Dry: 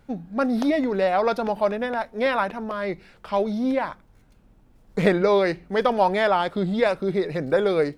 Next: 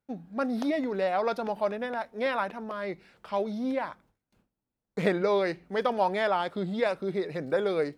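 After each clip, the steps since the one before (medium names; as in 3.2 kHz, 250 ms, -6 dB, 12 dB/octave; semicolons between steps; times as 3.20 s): high-pass 130 Hz 6 dB/octave; gate with hold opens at -49 dBFS; trim -6 dB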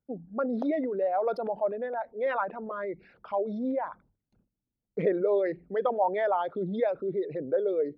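resonances exaggerated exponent 2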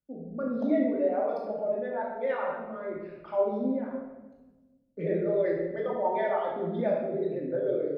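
rotary cabinet horn 0.85 Hz, later 7.5 Hz, at 4.88 s; simulated room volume 700 m³, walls mixed, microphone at 2.5 m; trim -4.5 dB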